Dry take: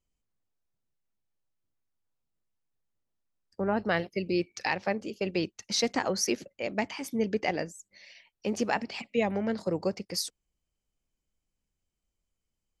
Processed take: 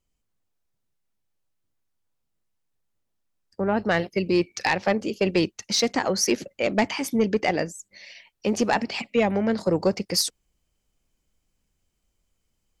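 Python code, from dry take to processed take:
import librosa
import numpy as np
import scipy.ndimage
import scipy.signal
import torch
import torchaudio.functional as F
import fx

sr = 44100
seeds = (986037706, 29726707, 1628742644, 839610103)

y = fx.rider(x, sr, range_db=10, speed_s=0.5)
y = fx.fold_sine(y, sr, drive_db=4, ceiling_db=-12.5)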